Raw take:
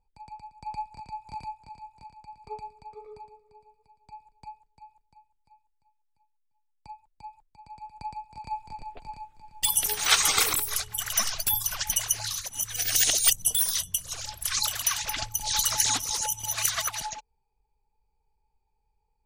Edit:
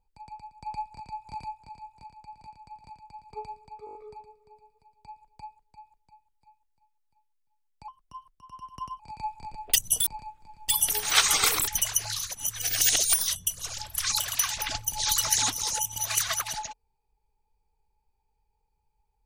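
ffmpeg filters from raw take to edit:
-filter_complex "[0:a]asplit=14[a][b][c][d][e][f][g][h][i][j][k][l][m][n];[a]atrim=end=2.412[o];[b]atrim=start=1.978:end=2.412[p];[c]atrim=start=1.978:end=3.012[q];[d]atrim=start=2.988:end=3.012[r];[e]atrim=start=2.988:end=3.012[s];[f]atrim=start=2.988:end=3.012[t];[g]atrim=start=2.988:end=3.012[u];[h]atrim=start=2.988:end=6.924[v];[i]atrim=start=6.92:end=8.27,asetpts=PTS-STARTPTS,asetrate=53361,aresample=44100,atrim=end_sample=49202,asetpts=PTS-STARTPTS[w];[j]atrim=start=8.266:end=9.012[x];[k]atrim=start=13.278:end=13.612[y];[l]atrim=start=9.008:end=10.622[z];[m]atrim=start=11.818:end=13.282[aa];[n]atrim=start=13.608[ab];[o][p]acrossfade=d=0.004:c1=hsin:c2=hsin[ac];[ac][q]acrossfade=d=0.004:c1=hsin:c2=hsin[ad];[ad][r]acrossfade=d=0.004:c1=hsin:c2=hsin[ae];[ae][s]acrossfade=d=0.004:c1=hsin:c2=hsin[af];[af][t]acrossfade=d=0.004:c1=hsin:c2=hsin[ag];[ag][u]acrossfade=d=0.004:c1=hsin:c2=hsin[ah];[ah][v]acrossfade=d=0.004:c1=hsin:c2=hsin[ai];[ai][w]acrossfade=d=0.004:c1=hsin:c2=hsin[aj];[aj][x]acrossfade=d=0.004:c1=hsin:c2=hsin[ak];[ak][y]acrossfade=d=0.004:c1=hsin:c2=hsin[al];[al][z]acrossfade=d=0.004:c1=hsin:c2=hsin[am];[am][aa]acrossfade=d=0.004:c1=hsin:c2=hsin[an];[an][ab]acrossfade=d=0.004:c1=hsin:c2=hsin"

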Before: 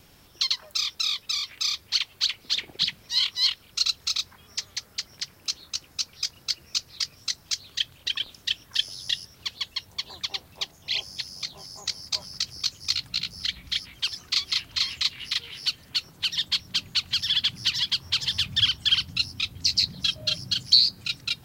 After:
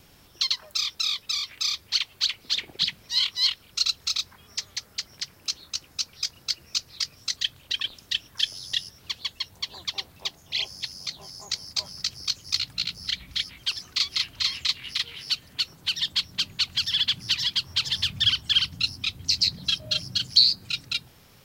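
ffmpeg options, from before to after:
-filter_complex "[0:a]asplit=2[a][b];[a]atrim=end=7.372[c];[b]atrim=start=7.728[d];[c][d]acrossfade=d=0.004:c1=hsin:c2=hsin"

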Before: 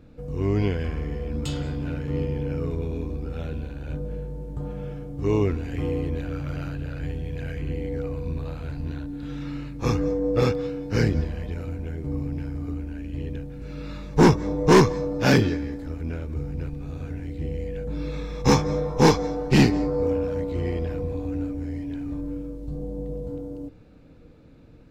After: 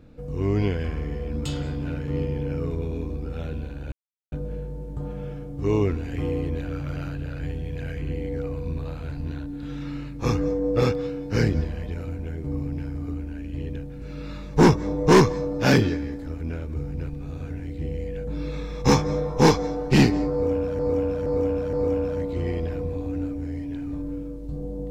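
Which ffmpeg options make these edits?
-filter_complex "[0:a]asplit=5[a][b][c][d][e];[a]atrim=end=3.92,asetpts=PTS-STARTPTS,afade=t=out:st=3.916:d=0.004:c=hsin,apad=pad_dur=0.4[f];[b]atrim=start=3.92:end=20.392,asetpts=PTS-STARTPTS,afade=t=in:d=0.004:c=hsin[g];[c]atrim=start=19.918:end=20.392[h];[d]atrim=start=19.918:end=20.392[i];[e]atrim=start=19.918[j];[f][g]concat=n=2:v=0:a=1[k];[k][h]acrossfade=d=0.004:c1=hsin:c2=hsin[l];[l][i]acrossfade=d=0.004:c1=hsin:c2=hsin[m];[m][j]acrossfade=d=0.004:c1=hsin:c2=hsin"

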